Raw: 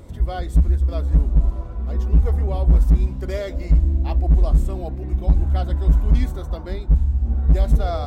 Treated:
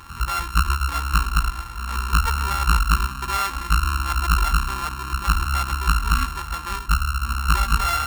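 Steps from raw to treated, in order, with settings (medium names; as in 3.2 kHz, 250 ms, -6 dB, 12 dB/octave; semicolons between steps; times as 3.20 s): sorted samples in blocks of 32 samples; resonant low shelf 800 Hz -9 dB, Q 3; trim +3.5 dB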